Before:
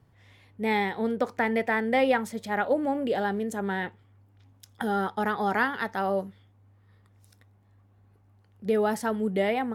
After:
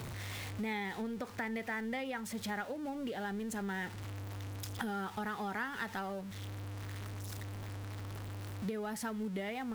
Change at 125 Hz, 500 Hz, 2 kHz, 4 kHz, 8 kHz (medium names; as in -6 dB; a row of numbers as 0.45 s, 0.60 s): -0.5 dB, -15.0 dB, -10.0 dB, -6.0 dB, -0.5 dB